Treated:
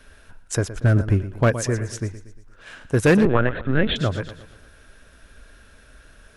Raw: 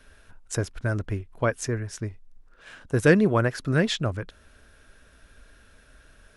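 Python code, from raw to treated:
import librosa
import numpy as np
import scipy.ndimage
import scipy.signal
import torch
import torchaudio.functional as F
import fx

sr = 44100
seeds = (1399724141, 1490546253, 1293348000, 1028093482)

p1 = fx.peak_eq(x, sr, hz=150.0, db=7.5, octaves=2.7, at=(0.79, 1.67))
p2 = fx.echo_feedback(p1, sr, ms=117, feedback_pct=48, wet_db=-14)
p3 = 10.0 ** (-16.0 / 20.0) * (np.abs((p2 / 10.0 ** (-16.0 / 20.0) + 3.0) % 4.0 - 2.0) - 1.0)
p4 = p2 + (p3 * librosa.db_to_amplitude(-3.5))
y = fx.lpc_vocoder(p4, sr, seeds[0], excitation='pitch_kept', order=16, at=(3.25, 3.96))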